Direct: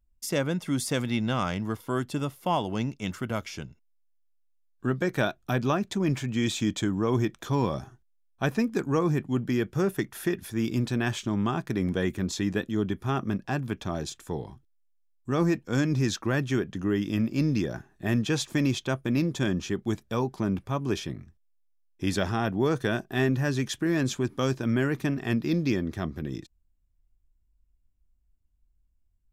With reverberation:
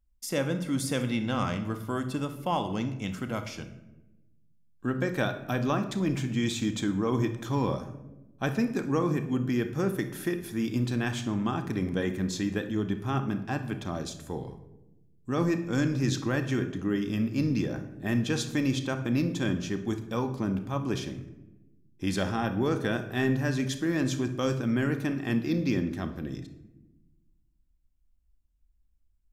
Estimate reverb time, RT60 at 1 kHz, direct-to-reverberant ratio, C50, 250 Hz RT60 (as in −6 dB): 1.0 s, 0.85 s, 7.0 dB, 10.5 dB, 1.6 s